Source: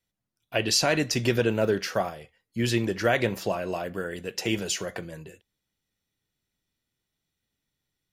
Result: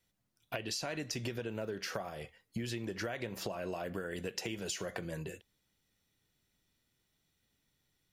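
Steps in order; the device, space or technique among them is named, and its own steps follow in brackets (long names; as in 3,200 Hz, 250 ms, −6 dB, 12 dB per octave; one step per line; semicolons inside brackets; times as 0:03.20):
serial compression, peaks first (downward compressor, threshold −33 dBFS, peak gain reduction 14 dB; downward compressor 2.5 to 1, threshold −42 dBFS, peak gain reduction 8.5 dB)
level +4 dB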